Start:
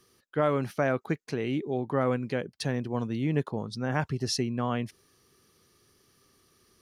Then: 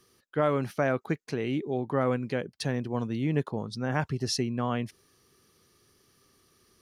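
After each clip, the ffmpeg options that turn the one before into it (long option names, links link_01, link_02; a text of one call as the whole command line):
ffmpeg -i in.wav -af anull out.wav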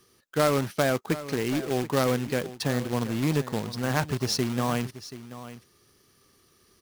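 ffmpeg -i in.wav -af "acrusher=bits=2:mode=log:mix=0:aa=0.000001,aecho=1:1:731:0.188,volume=2dB" out.wav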